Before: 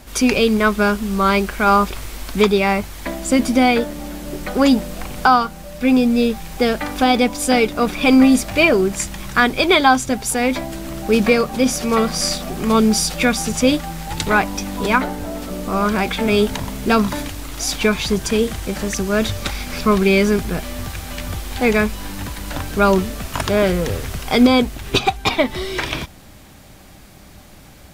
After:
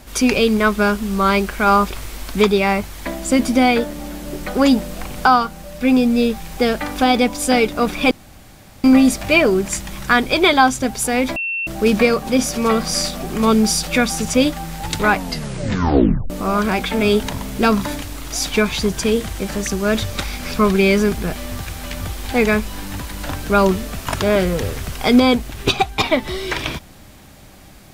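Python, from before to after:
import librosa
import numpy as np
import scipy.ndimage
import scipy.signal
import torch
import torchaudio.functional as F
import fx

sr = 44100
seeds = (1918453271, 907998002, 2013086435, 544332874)

y = fx.edit(x, sr, fx.insert_room_tone(at_s=8.11, length_s=0.73),
    fx.bleep(start_s=10.63, length_s=0.31, hz=2700.0, db=-20.0),
    fx.tape_stop(start_s=14.42, length_s=1.15), tone=tone)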